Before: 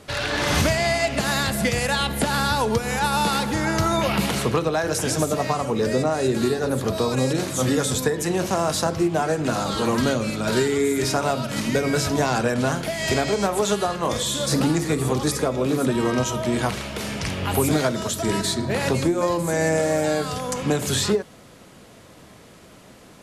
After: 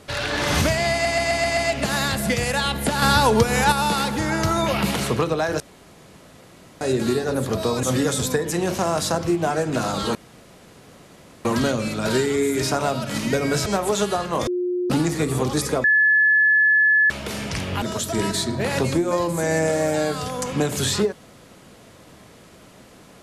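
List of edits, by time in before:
0.92 s: stutter 0.13 s, 6 plays
2.37–3.07 s: gain +5 dB
4.95–6.16 s: room tone
7.18–7.55 s: delete
9.87 s: insert room tone 1.30 s
12.08–13.36 s: delete
14.17–14.60 s: bleep 358 Hz -20.5 dBFS
15.54–16.80 s: bleep 1.72 kHz -13 dBFS
17.52–17.92 s: delete

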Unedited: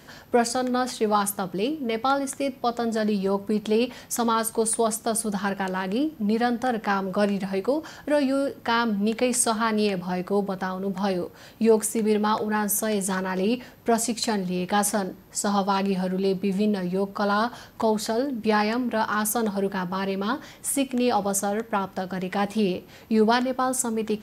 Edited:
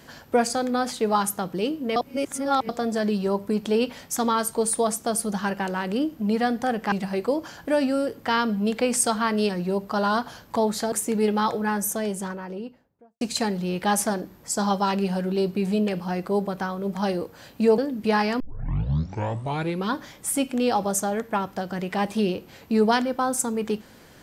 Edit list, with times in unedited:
1.96–2.69 s: reverse
6.92–7.32 s: delete
9.89–11.79 s: swap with 16.75–18.18 s
12.43–14.08 s: studio fade out
18.80 s: tape start 1.48 s

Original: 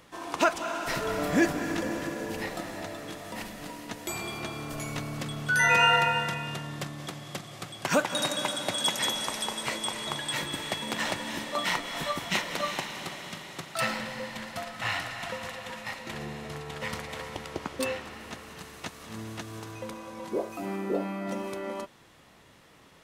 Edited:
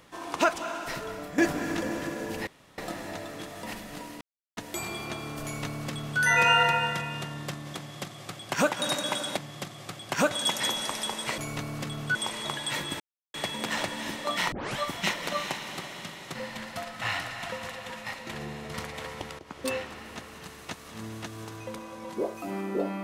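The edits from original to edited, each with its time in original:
0.52–1.38 s: fade out, to -13.5 dB
2.47 s: insert room tone 0.31 s
3.90 s: insert silence 0.36 s
4.77–5.54 s: copy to 9.77 s
7.10–8.04 s: copy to 8.70 s
10.62 s: insert silence 0.34 s
11.80 s: tape start 0.26 s
13.63–14.15 s: delete
16.54–16.89 s: delete
17.54–17.85 s: fade in, from -17.5 dB

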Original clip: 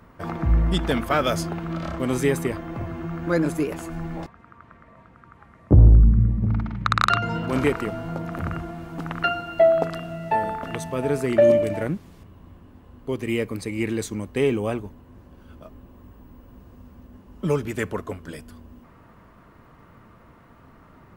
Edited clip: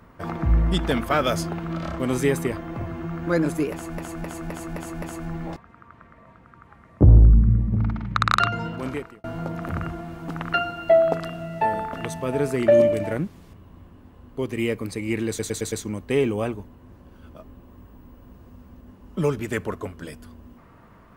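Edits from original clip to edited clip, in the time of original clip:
3.72–3.98 s: loop, 6 plays
7.11–7.94 s: fade out
13.98 s: stutter 0.11 s, 5 plays

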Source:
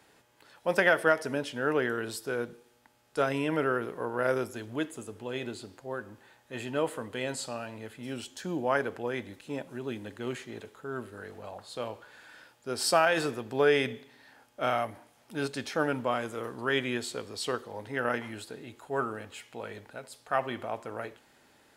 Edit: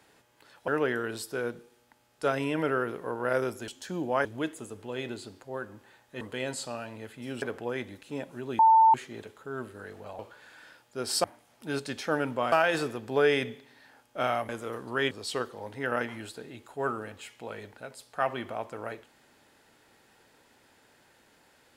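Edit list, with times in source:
0.68–1.62 s: delete
6.58–7.02 s: delete
8.23–8.80 s: move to 4.62 s
9.97–10.32 s: bleep 893 Hz -15 dBFS
11.57–11.90 s: delete
14.92–16.20 s: move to 12.95 s
16.82–17.24 s: delete

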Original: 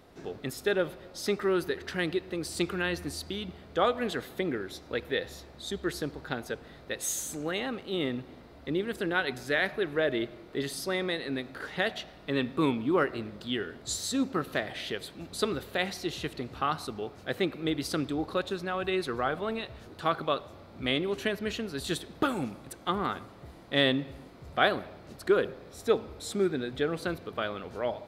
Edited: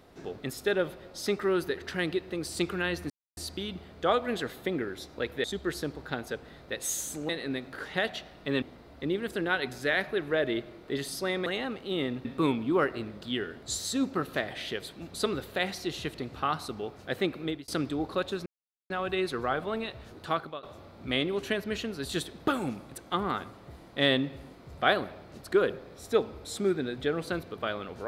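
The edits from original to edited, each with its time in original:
3.10 s: insert silence 0.27 s
5.17–5.63 s: delete
7.48–8.27 s: swap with 11.11–12.44 s
17.61–17.87 s: fade out
18.65 s: insert silence 0.44 s
20.02–20.38 s: fade out, to -20.5 dB

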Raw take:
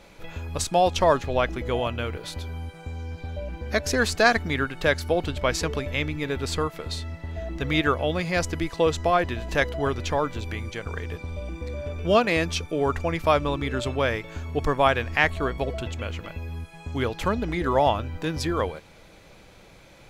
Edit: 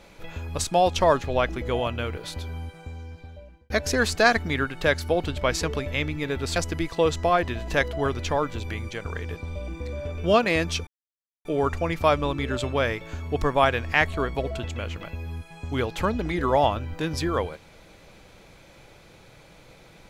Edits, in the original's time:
2.57–3.70 s: fade out
6.56–8.37 s: delete
12.68 s: insert silence 0.58 s

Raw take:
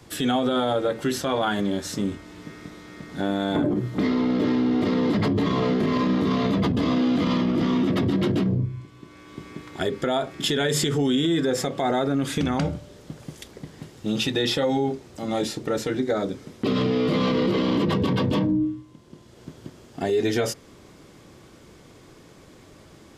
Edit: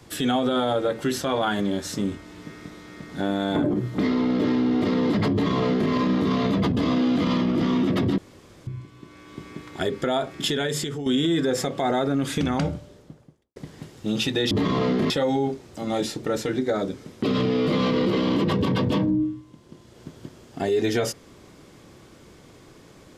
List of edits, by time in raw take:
5.32–5.91 s: copy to 14.51 s
8.18–8.67 s: room tone
10.40–11.06 s: fade out, to -10.5 dB
12.63–13.56 s: studio fade out

